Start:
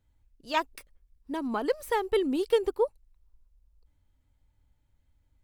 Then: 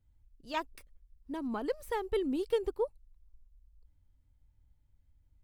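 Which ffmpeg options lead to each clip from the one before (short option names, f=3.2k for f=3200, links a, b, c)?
-af "lowshelf=f=210:g=10.5,volume=-8dB"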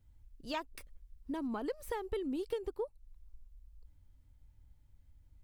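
-af "acompressor=threshold=-41dB:ratio=4,volume=5dB"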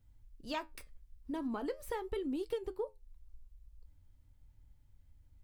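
-af "flanger=delay=6.7:depth=7.4:regen=-70:speed=0.43:shape=triangular,volume=4dB"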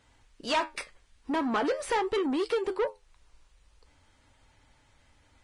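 -filter_complex "[0:a]asplit=2[a][b];[b]highpass=f=720:p=1,volume=22dB,asoftclip=type=tanh:threshold=-25dB[c];[a][c]amix=inputs=2:normalize=0,lowpass=f=2.7k:p=1,volume=-6dB,lowshelf=f=240:g=-9,volume=7.5dB" -ar 22050 -c:a libvorbis -b:a 32k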